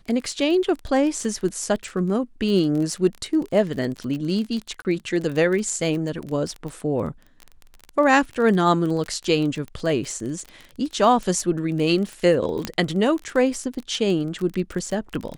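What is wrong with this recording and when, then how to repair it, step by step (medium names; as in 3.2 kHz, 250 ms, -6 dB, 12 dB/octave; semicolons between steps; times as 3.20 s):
crackle 24 per s -27 dBFS
4.82–4.85 s: dropout 29 ms
12.65 s: pop -10 dBFS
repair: de-click; interpolate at 4.82 s, 29 ms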